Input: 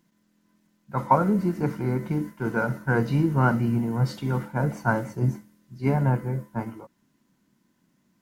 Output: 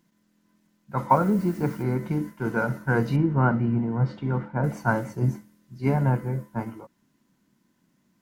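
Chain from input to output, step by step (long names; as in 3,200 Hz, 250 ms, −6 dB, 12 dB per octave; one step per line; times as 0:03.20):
0:01.09–0:01.82: background noise blue −54 dBFS
0:03.16–0:04.64: Bessel low-pass filter 1,900 Hz, order 2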